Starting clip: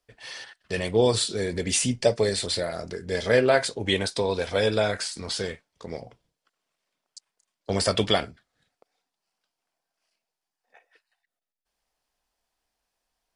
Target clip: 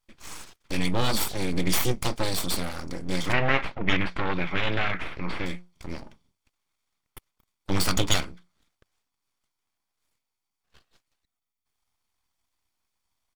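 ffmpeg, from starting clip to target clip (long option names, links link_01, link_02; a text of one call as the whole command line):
ffmpeg -i in.wav -filter_complex "[0:a]equalizer=frequency=89:width_type=o:width=0.23:gain=12,aecho=1:1:0.9:0.75,aeval=exprs='abs(val(0))':channel_layout=same,asplit=3[link_01][link_02][link_03];[link_01]afade=type=out:start_time=3.32:duration=0.02[link_04];[link_02]lowpass=frequency=2200:width_type=q:width=1.9,afade=type=in:start_time=3.32:duration=0.02,afade=type=out:start_time=5.45:duration=0.02[link_05];[link_03]afade=type=in:start_time=5.45:duration=0.02[link_06];[link_04][link_05][link_06]amix=inputs=3:normalize=0" out.wav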